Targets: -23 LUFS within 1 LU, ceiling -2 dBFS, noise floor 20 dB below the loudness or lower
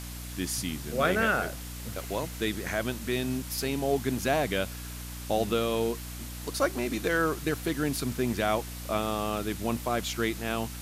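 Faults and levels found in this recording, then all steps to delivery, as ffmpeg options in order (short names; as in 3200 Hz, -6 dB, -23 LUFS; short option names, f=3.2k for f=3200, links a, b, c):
hum 60 Hz; harmonics up to 300 Hz; hum level -38 dBFS; noise floor -40 dBFS; noise floor target -50 dBFS; loudness -30.0 LUFS; peak -12.5 dBFS; loudness target -23.0 LUFS
-> -af "bandreject=f=60:t=h:w=6,bandreject=f=120:t=h:w=6,bandreject=f=180:t=h:w=6,bandreject=f=240:t=h:w=6,bandreject=f=300:t=h:w=6"
-af "afftdn=nr=10:nf=-40"
-af "volume=7dB"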